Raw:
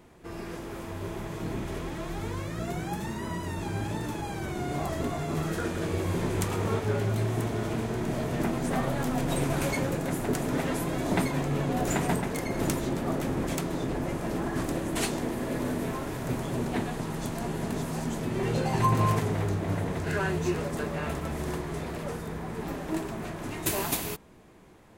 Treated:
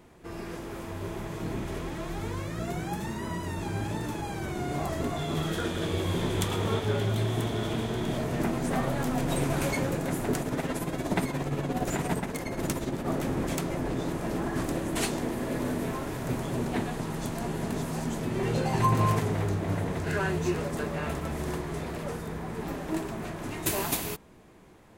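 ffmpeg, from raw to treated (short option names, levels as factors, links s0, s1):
-filter_complex "[0:a]asettb=1/sr,asplit=3[s0][s1][s2];[s0]atrim=end=5.164[s3];[s1]atrim=start=5.16:end=8.18,asetpts=PTS-STARTPTS,afade=t=in:d=0.004:c=qsin,afade=t=out:st=3.016:d=0.004:c=qsin,equalizer=f=3400:t=o:w=0.26:g=12[s4];[s2]atrim=start=8.176[s5];[s3][s4]acrossfade=d=0.004:c1=hsin:c2=qsin[s6];[s6][s5]acrossfade=d=0.004:c1=qsin:c2=hsin,asplit=3[s7][s8][s9];[s7]afade=t=out:st=10.4:d=0.02[s10];[s8]tremolo=f=17:d=0.53,afade=t=in:st=10.4:d=0.02,afade=t=out:st=13.06:d=0.02[s11];[s9]afade=t=in:st=13.06:d=0.02[s12];[s10][s11][s12]amix=inputs=3:normalize=0,asplit=3[s13][s14][s15];[s13]atrim=end=13.702[s16];[s14]atrim=start=13.698:end=14.132,asetpts=PTS-STARTPTS,areverse[s17];[s15]atrim=start=14.128[s18];[s16][s17]acrossfade=d=0.004:c1=hsin:c2=hsin[s19];[s19][s18]acrossfade=d=0.004:c1=hsin:c2=hsin"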